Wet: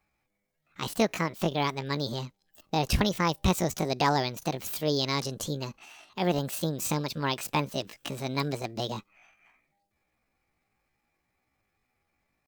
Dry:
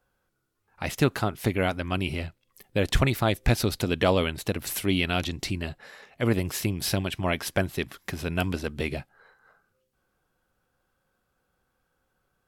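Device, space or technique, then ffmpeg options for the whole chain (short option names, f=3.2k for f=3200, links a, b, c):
chipmunk voice: -af "asetrate=68011,aresample=44100,atempo=0.64842,volume=-2.5dB"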